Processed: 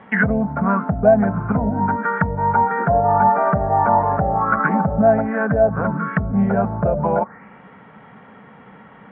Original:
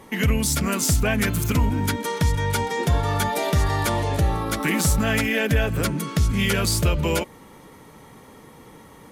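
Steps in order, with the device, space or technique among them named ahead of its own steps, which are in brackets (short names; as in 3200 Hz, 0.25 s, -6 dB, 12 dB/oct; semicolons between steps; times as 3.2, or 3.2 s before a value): 5.22–5.77 air absorption 320 m; envelope filter bass rig (envelope low-pass 650–3400 Hz down, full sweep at -16.5 dBFS; speaker cabinet 74–2100 Hz, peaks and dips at 77 Hz -8 dB, 200 Hz +9 dB, 330 Hz -8 dB, 710 Hz +7 dB, 1500 Hz +10 dB)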